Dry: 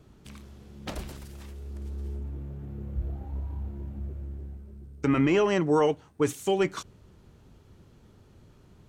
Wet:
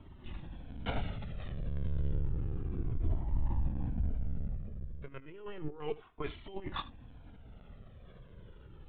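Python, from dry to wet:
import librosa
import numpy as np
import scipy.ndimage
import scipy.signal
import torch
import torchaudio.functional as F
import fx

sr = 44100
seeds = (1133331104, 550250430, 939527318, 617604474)

y = fx.highpass(x, sr, hz=840.0, slope=6, at=(5.8, 6.34))
y = fx.over_compress(y, sr, threshold_db=-31.0, ratio=-0.5)
y = fx.lpc_vocoder(y, sr, seeds[0], excitation='pitch_kept', order=10)
y = y + 10.0 ** (-19.0 / 20.0) * np.pad(y, (int(77 * sr / 1000.0), 0))[:len(y)]
y = fx.comb_cascade(y, sr, direction='falling', hz=0.31)
y = y * librosa.db_to_amplitude(1.5)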